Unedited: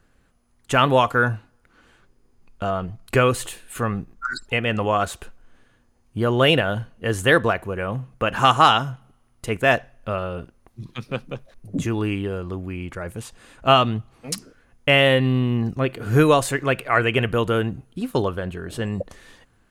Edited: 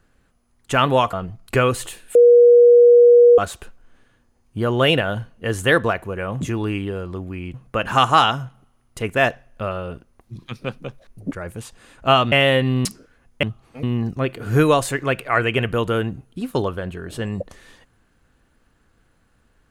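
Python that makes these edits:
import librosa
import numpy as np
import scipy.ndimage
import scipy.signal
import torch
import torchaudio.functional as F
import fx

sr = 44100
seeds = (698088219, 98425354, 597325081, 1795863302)

y = fx.edit(x, sr, fx.cut(start_s=1.13, length_s=1.6),
    fx.bleep(start_s=3.75, length_s=1.23, hz=480.0, db=-6.5),
    fx.move(start_s=11.78, length_s=1.13, to_s=8.01),
    fx.swap(start_s=13.92, length_s=0.4, other_s=14.9, other_length_s=0.53), tone=tone)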